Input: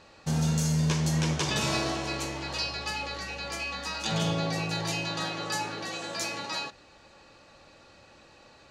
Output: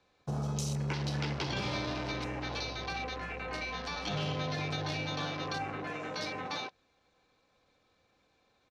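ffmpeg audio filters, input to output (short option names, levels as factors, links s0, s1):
-filter_complex "[0:a]afwtdn=0.0126,acrossover=split=85|220|1000[s0][s1][s2][s3];[s0]acompressor=threshold=0.00398:ratio=4[s4];[s1]acompressor=threshold=0.01:ratio=4[s5];[s2]acompressor=threshold=0.0126:ratio=4[s6];[s3]acompressor=threshold=0.0141:ratio=4[s7];[s4][s5][s6][s7]amix=inputs=4:normalize=0,asetrate=40440,aresample=44100,atempo=1.09051"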